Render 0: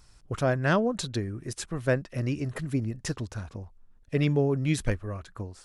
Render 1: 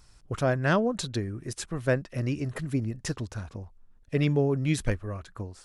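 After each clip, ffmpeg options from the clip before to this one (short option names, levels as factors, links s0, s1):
-af anull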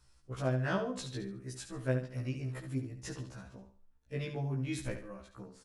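-af "aecho=1:1:71|142|213|284:0.355|0.11|0.0341|0.0106,afftfilt=real='re*1.73*eq(mod(b,3),0)':imag='im*1.73*eq(mod(b,3),0)':win_size=2048:overlap=0.75,volume=0.447"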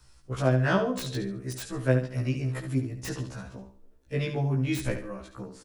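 -filter_complex "[0:a]acrossover=split=320|520|3700[s0][s1][s2][s3];[s1]aecho=1:1:275|550|825|1100:0.141|0.0706|0.0353|0.0177[s4];[s3]aeval=exprs='(mod(112*val(0)+1,2)-1)/112':c=same[s5];[s0][s4][s2][s5]amix=inputs=4:normalize=0,volume=2.66"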